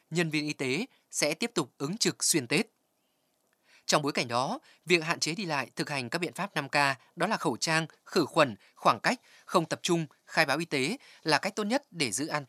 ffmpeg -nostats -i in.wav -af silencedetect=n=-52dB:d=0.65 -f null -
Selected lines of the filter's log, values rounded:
silence_start: 2.67
silence_end: 3.53 | silence_duration: 0.86